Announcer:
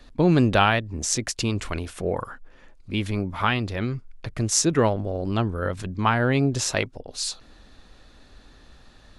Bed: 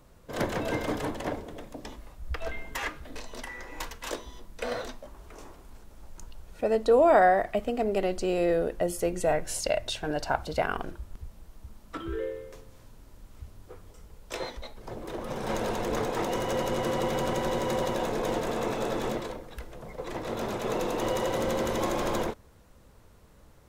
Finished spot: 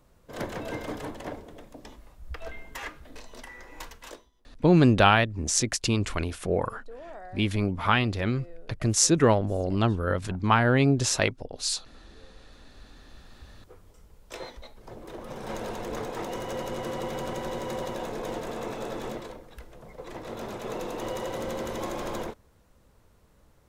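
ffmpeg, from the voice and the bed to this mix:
-filter_complex "[0:a]adelay=4450,volume=1[s0];[1:a]volume=5.96,afade=t=out:st=3.95:d=0.35:silence=0.1,afade=t=in:st=12.36:d=1.33:silence=0.1[s1];[s0][s1]amix=inputs=2:normalize=0"

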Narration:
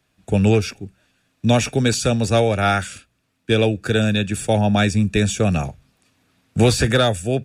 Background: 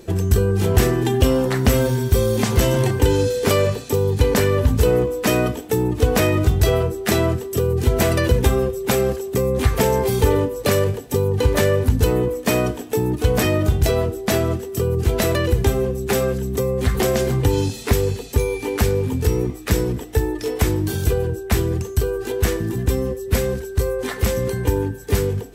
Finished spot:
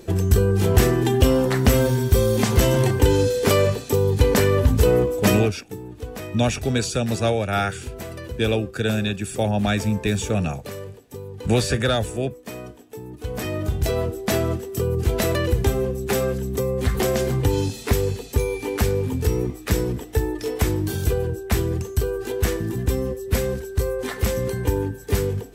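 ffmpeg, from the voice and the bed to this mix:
-filter_complex "[0:a]adelay=4900,volume=0.596[s0];[1:a]volume=4.73,afade=t=out:st=5.27:d=0.26:silence=0.158489,afade=t=in:st=13.12:d=1.05:silence=0.199526[s1];[s0][s1]amix=inputs=2:normalize=0"

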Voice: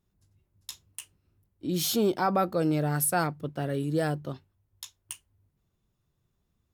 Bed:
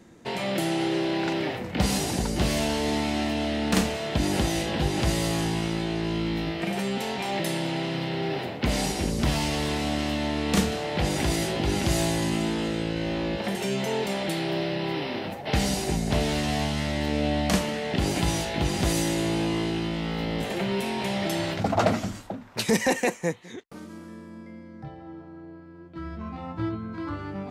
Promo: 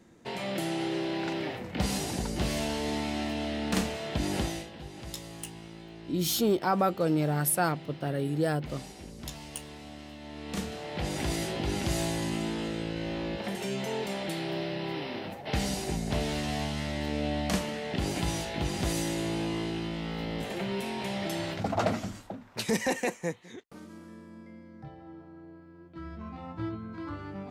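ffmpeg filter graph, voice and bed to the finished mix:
-filter_complex "[0:a]adelay=4450,volume=0.944[s0];[1:a]volume=2.24,afade=t=out:st=4.42:d=0.28:silence=0.237137,afade=t=in:st=10.2:d=1.12:silence=0.237137[s1];[s0][s1]amix=inputs=2:normalize=0"

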